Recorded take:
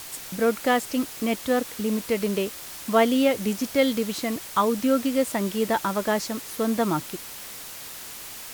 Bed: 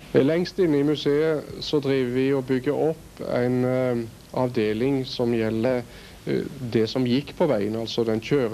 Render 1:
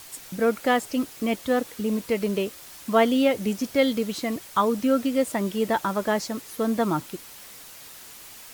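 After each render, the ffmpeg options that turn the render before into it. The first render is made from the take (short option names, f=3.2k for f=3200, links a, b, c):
-af "afftdn=nr=6:nf=-39"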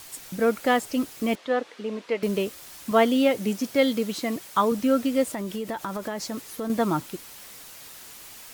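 -filter_complex "[0:a]asettb=1/sr,asplit=3[a][b][c];[a]atrim=end=1.354[d];[b]atrim=start=1.35:end=2.23,asetpts=PTS-STARTPTS,afade=t=in:d=0.004:c=qsin,afade=t=out:st=0.876:d=0.004:c=qsin,highpass=350,lowpass=3.7k[e];[c]atrim=start=2.226[f];[d][e]acrossfade=d=0.004:c1=hsin:c2=qsin[g];[g][f]acrossfade=d=0.004:c1=qsin:c2=hsin,asettb=1/sr,asplit=3[h][i][j];[h]atrim=end=2.914[k];[i]atrim=start=2.91:end=4.72,asetpts=PTS-STARTPTS,afade=t=in:d=0.004:c=qsin,afade=t=out:st=1.806:d=0.004:c=qsin,highpass=110[l];[j]atrim=start=4.716[m];[k][l]acrossfade=d=0.004:c1=hsin:c2=qsin[n];[n][m]acrossfade=d=0.004:c1=qsin:c2=hsin,asettb=1/sr,asplit=3[o][p][q];[o]atrim=end=5.244[r];[p]atrim=start=5.24:end=6.7,asetpts=PTS-STARTPTS,afade=t=in:d=0.004:c=qsin,afade=t=out:st=1.456:d=0.004:c=qsin,acompressor=threshold=-27dB:ratio=6:attack=3.2:release=140:knee=1:detection=peak[s];[q]atrim=start=6.696[t];[r][s]acrossfade=d=0.004:c1=hsin:c2=qsin[u];[u][t]acrossfade=d=0.004:c1=qsin:c2=hsin"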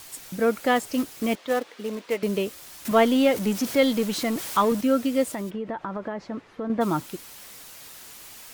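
-filter_complex "[0:a]asettb=1/sr,asplit=3[a][b][c];[a]atrim=end=0.764[d];[b]atrim=start=0.76:end=2.18,asetpts=PTS-STARTPTS,afade=t=in:d=0.004:c=qsin,afade=t=out:st=1.416:d=0.004:c=qsin,acrusher=bits=4:mode=log:mix=0:aa=0.000001[e];[c]atrim=start=2.176[f];[d][e]acrossfade=d=0.004:c1=hsin:c2=qsin[g];[g][f]acrossfade=d=0.004:c1=qsin:c2=hsin,asettb=1/sr,asplit=3[h][i][j];[h]atrim=end=2.854[k];[i]atrim=start=2.85:end=4.81,asetpts=PTS-STARTPTS,afade=t=in:d=0.004:c=qsin,afade=t=out:st=1.956:d=0.004:c=qsin,aeval=exprs='val(0)+0.5*0.0282*sgn(val(0))':c=same[l];[j]atrim=start=4.806[m];[k][l]acrossfade=d=0.004:c1=hsin:c2=qsin[n];[n][m]acrossfade=d=0.004:c1=qsin:c2=hsin,asplit=3[o][p][q];[o]afade=t=out:st=5.49:d=0.02[r];[p]lowpass=1.9k,afade=t=in:st=5.49:d=0.02,afade=t=out:st=6.8:d=0.02[s];[q]afade=t=in:st=6.8:d=0.02[t];[r][s][t]amix=inputs=3:normalize=0"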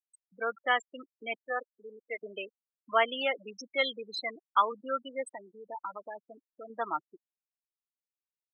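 -af "afftfilt=real='re*gte(hypot(re,im),0.0794)':imag='im*gte(hypot(re,im),0.0794)':win_size=1024:overlap=0.75,highpass=1k"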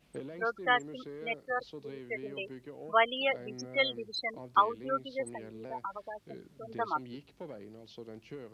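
-filter_complex "[1:a]volume=-23.5dB[a];[0:a][a]amix=inputs=2:normalize=0"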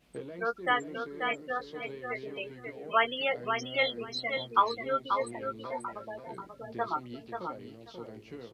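-filter_complex "[0:a]asplit=2[a][b];[b]adelay=17,volume=-7.5dB[c];[a][c]amix=inputs=2:normalize=0,aecho=1:1:536|1072|1608:0.501|0.0802|0.0128"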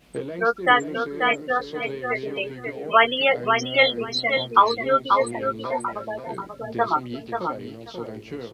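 -af "volume=10.5dB,alimiter=limit=-3dB:level=0:latency=1"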